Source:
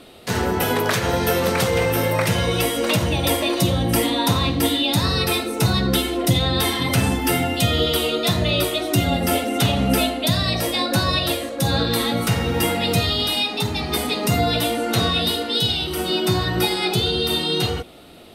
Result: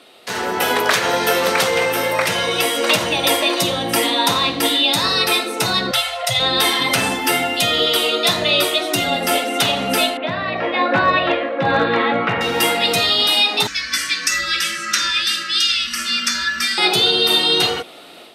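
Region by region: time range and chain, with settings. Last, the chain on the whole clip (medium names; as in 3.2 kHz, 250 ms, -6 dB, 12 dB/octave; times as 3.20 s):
5.91–6.40 s: elliptic band-stop 130–580 Hz, stop band 50 dB + treble shelf 11 kHz -7 dB + comb 1.5 ms, depth 32%
10.17–12.41 s: low-pass 2.4 kHz 24 dB/octave + hard clipper -12.5 dBFS
13.67–16.78 s: FFT filter 140 Hz 0 dB, 200 Hz -27 dB, 340 Hz -11 dB, 930 Hz -30 dB, 1.6 kHz +3 dB, 3.9 kHz -9 dB, 5.7 kHz +7 dB, 11 kHz -9 dB + frequency shift -130 Hz
whole clip: level rider; frequency weighting A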